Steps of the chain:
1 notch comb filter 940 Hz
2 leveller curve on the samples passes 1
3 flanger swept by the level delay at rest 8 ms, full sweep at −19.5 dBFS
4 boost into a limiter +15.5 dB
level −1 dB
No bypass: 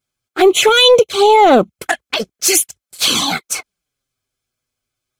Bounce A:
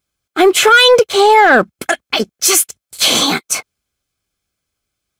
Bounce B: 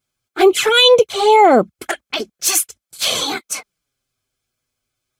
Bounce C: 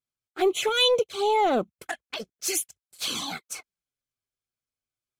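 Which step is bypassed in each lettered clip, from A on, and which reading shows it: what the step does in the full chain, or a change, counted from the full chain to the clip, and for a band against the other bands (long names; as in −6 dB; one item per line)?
3, 2 kHz band +6.0 dB
2, change in crest factor +2.0 dB
4, change in crest factor +4.0 dB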